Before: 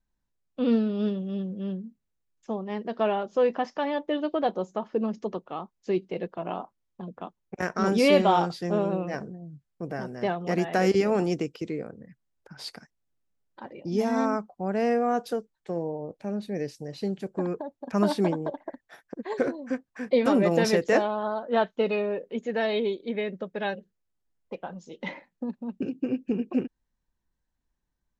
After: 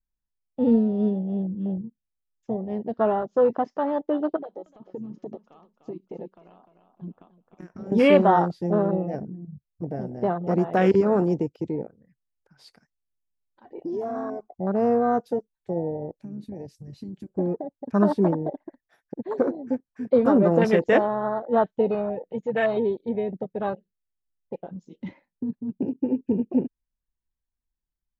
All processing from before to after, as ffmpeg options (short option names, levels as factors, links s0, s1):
-filter_complex "[0:a]asettb=1/sr,asplit=3[s0][s1][s2];[s0]atrim=end=4.364[s3];[s1]atrim=start=4.36:end=7.92,asetpts=PTS-STARTPTS,afade=t=in:d=0.004:c=qsin,afade=t=out:st=3.556:d=0.004:c=qsin,acompressor=threshold=0.02:ratio=10:attack=3.2:release=140:knee=1:detection=peak,aecho=1:1:300|600|900:0.398|0.111|0.0312,atrim=end_sample=156996[s4];[s2]atrim=start=7.916[s5];[s3][s4]acrossfade=d=0.004:c1=hsin:c2=qsin[s6];[s6][s5]acrossfade=d=0.004:c1=qsin:c2=hsin,asettb=1/sr,asplit=3[s7][s8][s9];[s7]atrim=end=13.654[s10];[s8]atrim=start=13.65:end=14.54,asetpts=PTS-STARTPTS,afade=t=in:d=0.004:c=qsin,afade=t=out:st=0.886:d=0.004:c=qsin,equalizer=f=720:w=7.3:g=8,aecho=1:1:2.7:0.93,atrim=end_sample=39249,acompressor=threshold=0.0316:ratio=6:attack=3.2:release=140:knee=1:detection=peak[s11];[s9]atrim=start=14.536[s12];[s10][s11]acrossfade=d=0.004:c1=hsin:c2=qsin[s13];[s13][s12]acrossfade=d=0.004:c1=qsin:c2=hsin,asettb=1/sr,asplit=3[s14][s15][s16];[s14]atrim=end=16.124[s17];[s15]atrim=start=16.12:end=17.3,asetpts=PTS-STARTPTS,afade=t=in:d=0.004:c=qsin,afade=t=out:st=1.176:d=0.004:c=qsin,highshelf=f=5200:g=6,acompressor=threshold=0.02:ratio=12:attack=3.2:release=140:knee=1:detection=peak[s18];[s16]atrim=start=17.296[s19];[s17][s18]acrossfade=d=0.004:c1=hsin:c2=qsin[s20];[s20][s19]acrossfade=d=0.004:c1=qsin:c2=hsin,asettb=1/sr,asplit=3[s21][s22][s23];[s21]atrim=end=21.944[s24];[s22]atrim=start=21.94:end=22.77,asetpts=PTS-STARTPTS,afade=t=in:d=0.004:c=qsin,afade=t=out:st=0.826:d=0.004:c=qsin,equalizer=f=360:w=2.7:g=-5.5,aecho=1:1:6.2:0.45,atrim=end_sample=36603[s25];[s23]atrim=start=22.766[s26];[s24][s25]acrossfade=d=0.004:c1=hsin:c2=qsin[s27];[s27][s26]acrossfade=d=0.004:c1=qsin:c2=hsin,afwtdn=0.0355,lowshelf=f=76:g=10,volume=1.41"